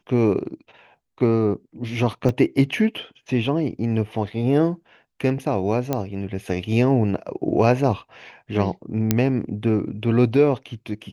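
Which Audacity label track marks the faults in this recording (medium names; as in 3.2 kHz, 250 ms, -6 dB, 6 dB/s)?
2.290000	2.290000	dropout 2.2 ms
5.930000	5.930000	pop -9 dBFS
9.110000	9.110000	pop -3 dBFS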